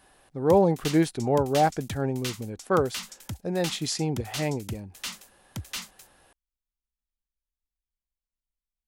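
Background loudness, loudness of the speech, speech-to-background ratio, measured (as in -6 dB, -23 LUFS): -38.0 LUFS, -26.0 LUFS, 12.0 dB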